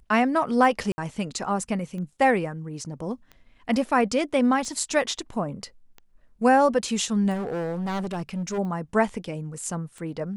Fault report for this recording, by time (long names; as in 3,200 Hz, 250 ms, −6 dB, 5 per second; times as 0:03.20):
scratch tick 45 rpm
0:00.92–0:00.98: drop-out 60 ms
0:07.33–0:08.59: clipping −25.5 dBFS